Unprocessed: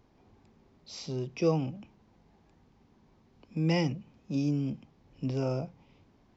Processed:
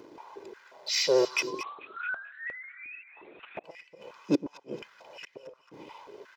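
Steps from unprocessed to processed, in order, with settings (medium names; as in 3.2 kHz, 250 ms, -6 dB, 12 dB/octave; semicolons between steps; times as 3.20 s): 1.47–3.03 s: painted sound rise 1–2.7 kHz -21 dBFS; inverted gate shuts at -24 dBFS, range -39 dB; in parallel at -10 dB: wavefolder -39 dBFS; on the sum: comb 2 ms, depth 64%; waveshaping leveller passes 1; two-band feedback delay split 1.1 kHz, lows 121 ms, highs 222 ms, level -12 dB; vibrato 13 Hz 33 cents; 1.63–3.64 s: LPC vocoder at 8 kHz whisper; step-sequenced high-pass 5.6 Hz 300–2000 Hz; trim +7 dB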